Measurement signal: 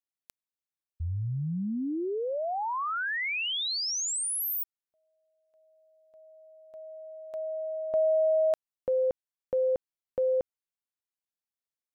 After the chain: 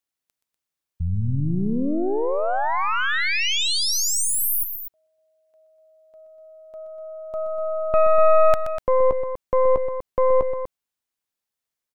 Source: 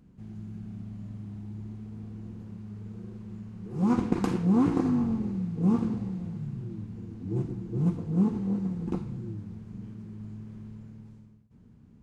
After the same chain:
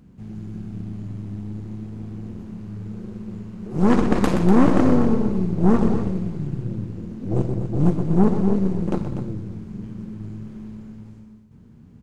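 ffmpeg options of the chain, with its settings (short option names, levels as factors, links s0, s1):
-af "aeval=exprs='0.335*(cos(1*acos(clip(val(0)/0.335,-1,1)))-cos(1*PI/2))+0.00668*(cos(3*acos(clip(val(0)/0.335,-1,1)))-cos(3*PI/2))+0.00376*(cos(5*acos(clip(val(0)/0.335,-1,1)))-cos(5*PI/2))+0.0531*(cos(8*acos(clip(val(0)/0.335,-1,1)))-cos(8*PI/2))':c=same,acontrast=84,aecho=1:1:125.4|244.9:0.316|0.316"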